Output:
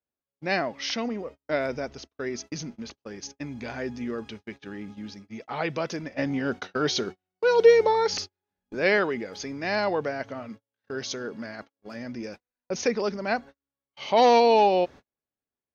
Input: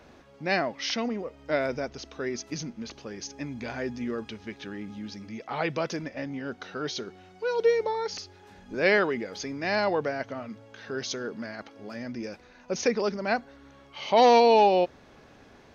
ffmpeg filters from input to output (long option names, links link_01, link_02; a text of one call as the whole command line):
ffmpeg -i in.wav -filter_complex "[0:a]agate=range=-43dB:threshold=-40dB:ratio=16:detection=peak,asettb=1/sr,asplit=3[link_01][link_02][link_03];[link_01]atrim=end=6.184[link_04];[link_02]atrim=start=6.18:end=8.73,asetpts=PTS-STARTPTS,afade=type=in:duration=0.004:curve=qsin,afade=type=out:start_time=2.546:duration=0.004:curve=qsin,acontrast=87[link_05];[link_03]atrim=start=8.726[link_06];[link_04][link_05]acrossfade=duration=0.004:curve1=hsin:curve2=qsin[link_07];[link_07][link_06]acrossfade=duration=0.004:curve1=qsin:curve2=hsin" out.wav